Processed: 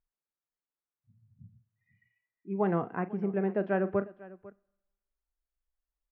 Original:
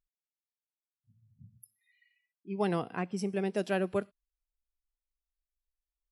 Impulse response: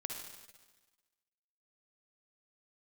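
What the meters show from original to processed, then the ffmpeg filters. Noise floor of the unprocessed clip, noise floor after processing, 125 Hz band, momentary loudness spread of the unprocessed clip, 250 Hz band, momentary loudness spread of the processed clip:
under -85 dBFS, under -85 dBFS, +2.5 dB, 6 LU, +2.5 dB, 14 LU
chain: -filter_complex "[0:a]lowpass=f=1800:w=0.5412,lowpass=f=1800:w=1.3066,aecho=1:1:41|499:0.2|0.106,asplit=2[s0][s1];[1:a]atrim=start_sample=2205,asetrate=52920,aresample=44100,lowshelf=f=330:g=-5.5[s2];[s1][s2]afir=irnorm=-1:irlink=0,volume=0.119[s3];[s0][s3]amix=inputs=2:normalize=0,volume=1.19"

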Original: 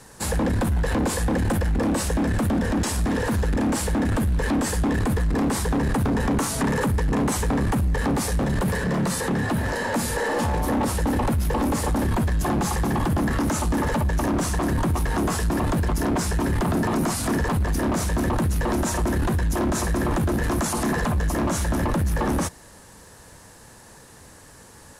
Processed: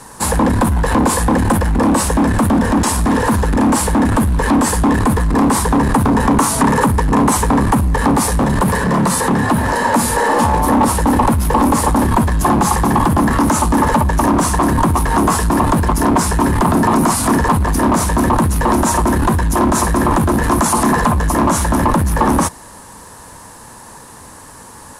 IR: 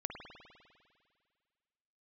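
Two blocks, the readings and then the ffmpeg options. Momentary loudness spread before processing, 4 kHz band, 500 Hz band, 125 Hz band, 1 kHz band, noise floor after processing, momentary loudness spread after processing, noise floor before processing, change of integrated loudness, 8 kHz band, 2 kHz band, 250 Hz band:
1 LU, +7.0 dB, +8.0 dB, +7.0 dB, +14.0 dB, -37 dBFS, 2 LU, -47 dBFS, +9.5 dB, +10.5 dB, +8.5 dB, +9.5 dB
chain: -af "equalizer=f=250:t=o:w=0.67:g=4,equalizer=f=1000:t=o:w=0.67:g=10,equalizer=f=10000:t=o:w=0.67:g=6,volume=2.11"

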